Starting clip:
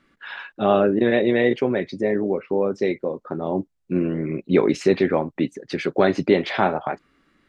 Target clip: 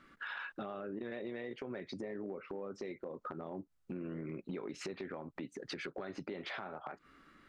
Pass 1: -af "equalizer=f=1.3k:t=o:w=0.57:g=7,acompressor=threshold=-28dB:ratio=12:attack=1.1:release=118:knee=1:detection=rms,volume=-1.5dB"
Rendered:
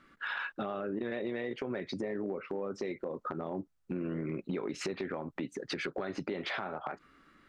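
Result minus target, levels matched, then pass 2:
compressor: peak gain reduction -6.5 dB
-af "equalizer=f=1.3k:t=o:w=0.57:g=7,acompressor=threshold=-35dB:ratio=12:attack=1.1:release=118:knee=1:detection=rms,volume=-1.5dB"

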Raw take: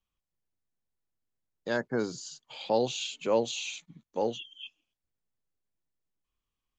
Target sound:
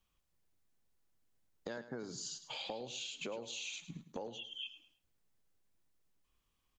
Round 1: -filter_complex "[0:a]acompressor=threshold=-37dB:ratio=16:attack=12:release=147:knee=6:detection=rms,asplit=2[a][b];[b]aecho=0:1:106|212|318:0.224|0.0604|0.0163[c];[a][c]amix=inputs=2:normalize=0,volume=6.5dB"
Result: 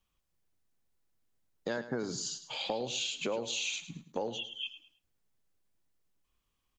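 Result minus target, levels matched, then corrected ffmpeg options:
compressor: peak gain reduction -9 dB
-filter_complex "[0:a]acompressor=threshold=-46.5dB:ratio=16:attack=12:release=147:knee=6:detection=rms,asplit=2[a][b];[b]aecho=0:1:106|212|318:0.224|0.0604|0.0163[c];[a][c]amix=inputs=2:normalize=0,volume=6.5dB"

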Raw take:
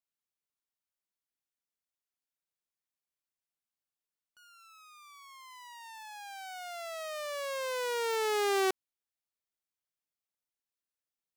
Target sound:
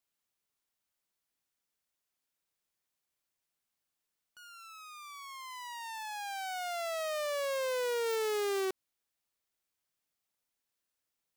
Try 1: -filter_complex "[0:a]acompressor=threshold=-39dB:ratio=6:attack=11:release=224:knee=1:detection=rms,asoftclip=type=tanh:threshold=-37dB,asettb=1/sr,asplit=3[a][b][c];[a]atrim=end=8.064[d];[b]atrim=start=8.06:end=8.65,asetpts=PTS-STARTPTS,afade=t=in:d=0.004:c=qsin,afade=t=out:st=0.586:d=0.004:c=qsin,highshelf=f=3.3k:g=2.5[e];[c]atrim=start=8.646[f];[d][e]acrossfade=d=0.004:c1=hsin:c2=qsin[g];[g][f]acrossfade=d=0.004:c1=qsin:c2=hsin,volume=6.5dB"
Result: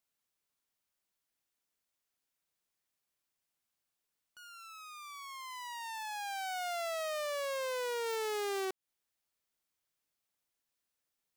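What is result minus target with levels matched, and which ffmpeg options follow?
compressor: peak gain reduction +8 dB
-filter_complex "[0:a]acompressor=threshold=-29.5dB:ratio=6:attack=11:release=224:knee=1:detection=rms,asoftclip=type=tanh:threshold=-37dB,asettb=1/sr,asplit=3[a][b][c];[a]atrim=end=8.064[d];[b]atrim=start=8.06:end=8.65,asetpts=PTS-STARTPTS,afade=t=in:d=0.004:c=qsin,afade=t=out:st=0.586:d=0.004:c=qsin,highshelf=f=3.3k:g=2.5[e];[c]atrim=start=8.646[f];[d][e]acrossfade=d=0.004:c1=hsin:c2=qsin[g];[g][f]acrossfade=d=0.004:c1=qsin:c2=hsin,volume=6.5dB"

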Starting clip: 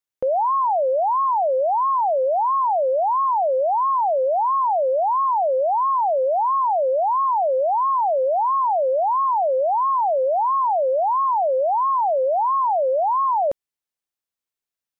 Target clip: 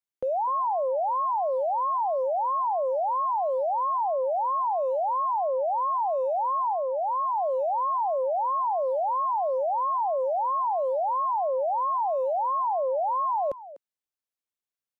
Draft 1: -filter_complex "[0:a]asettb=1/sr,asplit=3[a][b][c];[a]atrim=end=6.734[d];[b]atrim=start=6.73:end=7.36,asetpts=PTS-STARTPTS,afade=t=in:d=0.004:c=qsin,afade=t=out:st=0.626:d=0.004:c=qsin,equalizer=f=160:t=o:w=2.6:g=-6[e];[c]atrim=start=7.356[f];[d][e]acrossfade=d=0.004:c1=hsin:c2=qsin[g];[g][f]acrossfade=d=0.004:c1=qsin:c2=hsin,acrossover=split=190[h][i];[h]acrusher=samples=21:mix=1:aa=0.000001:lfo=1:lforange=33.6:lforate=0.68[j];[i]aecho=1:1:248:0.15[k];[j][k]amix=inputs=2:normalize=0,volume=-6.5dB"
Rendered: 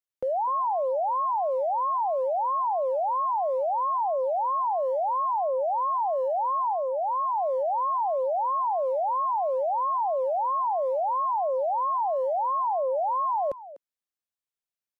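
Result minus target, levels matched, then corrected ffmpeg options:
decimation with a swept rate: distortion +10 dB
-filter_complex "[0:a]asettb=1/sr,asplit=3[a][b][c];[a]atrim=end=6.734[d];[b]atrim=start=6.73:end=7.36,asetpts=PTS-STARTPTS,afade=t=in:d=0.004:c=qsin,afade=t=out:st=0.626:d=0.004:c=qsin,equalizer=f=160:t=o:w=2.6:g=-6[e];[c]atrim=start=7.356[f];[d][e]acrossfade=d=0.004:c1=hsin:c2=qsin[g];[g][f]acrossfade=d=0.004:c1=qsin:c2=hsin,acrossover=split=190[h][i];[h]acrusher=samples=8:mix=1:aa=0.000001:lfo=1:lforange=12.8:lforate=0.68[j];[i]aecho=1:1:248:0.15[k];[j][k]amix=inputs=2:normalize=0,volume=-6.5dB"

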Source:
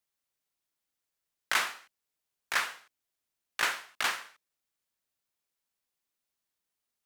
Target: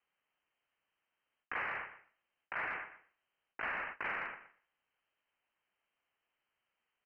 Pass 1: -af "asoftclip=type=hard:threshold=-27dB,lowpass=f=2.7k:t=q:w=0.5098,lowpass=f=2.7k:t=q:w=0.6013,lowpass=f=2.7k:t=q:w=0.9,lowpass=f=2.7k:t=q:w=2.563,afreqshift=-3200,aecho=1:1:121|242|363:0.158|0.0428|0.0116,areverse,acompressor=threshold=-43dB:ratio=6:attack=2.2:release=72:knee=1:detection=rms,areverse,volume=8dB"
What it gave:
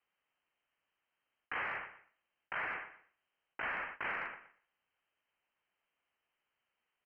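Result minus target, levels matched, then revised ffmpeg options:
hard clip: distortion +14 dB
-af "asoftclip=type=hard:threshold=-17.5dB,lowpass=f=2.7k:t=q:w=0.5098,lowpass=f=2.7k:t=q:w=0.6013,lowpass=f=2.7k:t=q:w=0.9,lowpass=f=2.7k:t=q:w=2.563,afreqshift=-3200,aecho=1:1:121|242|363:0.158|0.0428|0.0116,areverse,acompressor=threshold=-43dB:ratio=6:attack=2.2:release=72:knee=1:detection=rms,areverse,volume=8dB"

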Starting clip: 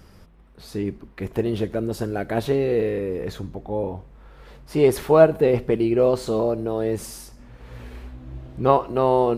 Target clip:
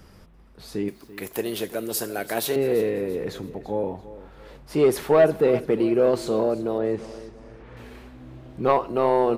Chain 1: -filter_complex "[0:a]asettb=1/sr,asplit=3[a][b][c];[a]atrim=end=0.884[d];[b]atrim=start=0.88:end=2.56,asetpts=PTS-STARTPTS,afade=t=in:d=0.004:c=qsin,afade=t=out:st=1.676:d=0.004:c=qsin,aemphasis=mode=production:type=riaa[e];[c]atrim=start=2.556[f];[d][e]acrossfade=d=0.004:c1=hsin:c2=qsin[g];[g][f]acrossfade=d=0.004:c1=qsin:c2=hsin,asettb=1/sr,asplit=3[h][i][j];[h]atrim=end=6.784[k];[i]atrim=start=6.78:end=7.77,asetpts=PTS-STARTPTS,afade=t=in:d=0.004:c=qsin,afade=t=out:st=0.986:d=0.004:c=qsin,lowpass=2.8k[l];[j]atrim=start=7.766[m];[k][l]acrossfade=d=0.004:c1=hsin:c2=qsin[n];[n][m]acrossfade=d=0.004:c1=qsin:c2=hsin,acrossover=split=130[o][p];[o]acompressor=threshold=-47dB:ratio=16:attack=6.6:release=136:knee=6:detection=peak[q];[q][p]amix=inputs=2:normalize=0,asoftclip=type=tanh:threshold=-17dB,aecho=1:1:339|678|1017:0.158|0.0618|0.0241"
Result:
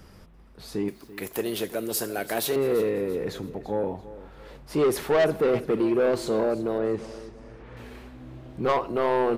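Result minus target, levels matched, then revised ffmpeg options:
soft clip: distortion +7 dB
-filter_complex "[0:a]asettb=1/sr,asplit=3[a][b][c];[a]atrim=end=0.884[d];[b]atrim=start=0.88:end=2.56,asetpts=PTS-STARTPTS,afade=t=in:d=0.004:c=qsin,afade=t=out:st=1.676:d=0.004:c=qsin,aemphasis=mode=production:type=riaa[e];[c]atrim=start=2.556[f];[d][e]acrossfade=d=0.004:c1=hsin:c2=qsin[g];[g][f]acrossfade=d=0.004:c1=qsin:c2=hsin,asettb=1/sr,asplit=3[h][i][j];[h]atrim=end=6.784[k];[i]atrim=start=6.78:end=7.77,asetpts=PTS-STARTPTS,afade=t=in:d=0.004:c=qsin,afade=t=out:st=0.986:d=0.004:c=qsin,lowpass=2.8k[l];[j]atrim=start=7.766[m];[k][l]acrossfade=d=0.004:c1=hsin:c2=qsin[n];[n][m]acrossfade=d=0.004:c1=qsin:c2=hsin,acrossover=split=130[o][p];[o]acompressor=threshold=-47dB:ratio=16:attack=6.6:release=136:knee=6:detection=peak[q];[q][p]amix=inputs=2:normalize=0,asoftclip=type=tanh:threshold=-9dB,aecho=1:1:339|678|1017:0.158|0.0618|0.0241"

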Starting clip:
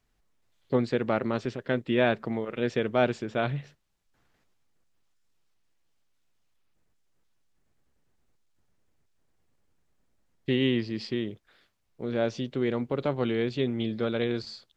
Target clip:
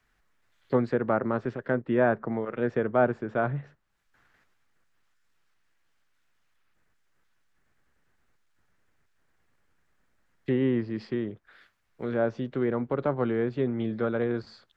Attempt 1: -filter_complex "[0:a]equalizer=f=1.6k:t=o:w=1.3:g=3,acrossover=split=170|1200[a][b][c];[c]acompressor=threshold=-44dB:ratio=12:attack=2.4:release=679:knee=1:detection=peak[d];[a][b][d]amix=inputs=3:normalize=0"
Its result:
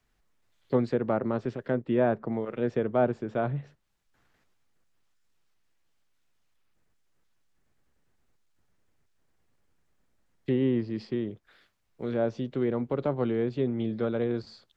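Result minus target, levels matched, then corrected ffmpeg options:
2000 Hz band -5.5 dB
-filter_complex "[0:a]equalizer=f=1.6k:t=o:w=1.3:g=11.5,acrossover=split=170|1200[a][b][c];[c]acompressor=threshold=-44dB:ratio=12:attack=2.4:release=679:knee=1:detection=peak[d];[a][b][d]amix=inputs=3:normalize=0"

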